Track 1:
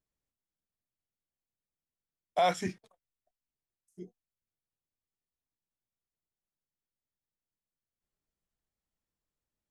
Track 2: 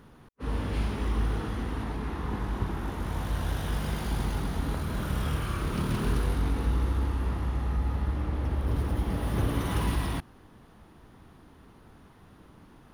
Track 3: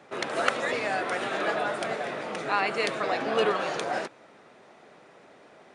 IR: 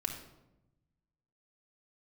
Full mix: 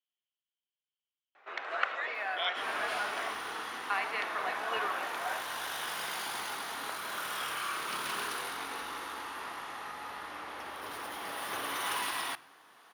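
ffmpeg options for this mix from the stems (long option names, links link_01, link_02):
-filter_complex "[0:a]lowpass=frequency=3100:width_type=q:width=13,volume=-8.5dB[link_01];[1:a]acontrast=53,adelay=2150,volume=-3dB,asplit=2[link_02][link_03];[link_03]volume=-14.5dB[link_04];[2:a]lowpass=2500,adelay=1350,volume=-6.5dB,asplit=3[link_05][link_06][link_07];[link_05]atrim=end=3.34,asetpts=PTS-STARTPTS,afade=type=out:start_time=3.336:duration=0.004:curve=hsin[link_08];[link_06]atrim=start=3.34:end=3.9,asetpts=PTS-STARTPTS,volume=0[link_09];[link_07]atrim=start=3.9,asetpts=PTS-STARTPTS,afade=type=in:duration=0.004:curve=hsin[link_10];[link_08][link_09][link_10]concat=n=3:v=0:a=1,asplit=2[link_11][link_12];[link_12]volume=-5.5dB[link_13];[3:a]atrim=start_sample=2205[link_14];[link_04][link_13]amix=inputs=2:normalize=0[link_15];[link_15][link_14]afir=irnorm=-1:irlink=0[link_16];[link_01][link_02][link_11][link_16]amix=inputs=4:normalize=0,highpass=970"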